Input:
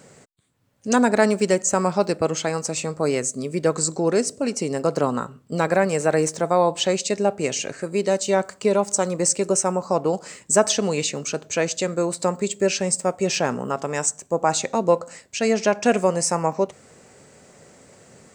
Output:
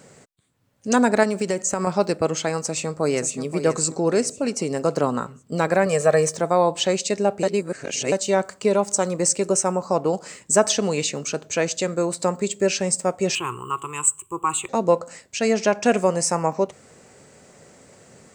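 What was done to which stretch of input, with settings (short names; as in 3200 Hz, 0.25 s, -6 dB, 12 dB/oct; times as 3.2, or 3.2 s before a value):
1.23–1.87 compressor, threshold -18 dBFS
2.6–3.39 echo throw 0.53 s, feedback 40%, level -10 dB
5.86–6.36 comb 1.7 ms, depth 66%
7.43–8.12 reverse
13.35–14.69 EQ curve 120 Hz 0 dB, 240 Hz -21 dB, 350 Hz +2 dB, 620 Hz -29 dB, 1100 Hz +9 dB, 1700 Hz -14 dB, 2900 Hz +7 dB, 5400 Hz -28 dB, 7900 Hz +6 dB, 12000 Hz +9 dB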